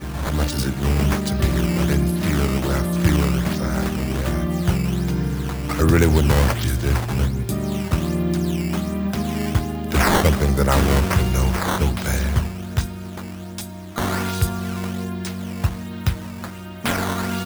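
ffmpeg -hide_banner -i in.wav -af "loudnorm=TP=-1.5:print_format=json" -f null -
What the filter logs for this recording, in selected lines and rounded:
"input_i" : "-21.8",
"input_tp" : "-2.5",
"input_lra" : "6.2",
"input_thresh" : "-32.0",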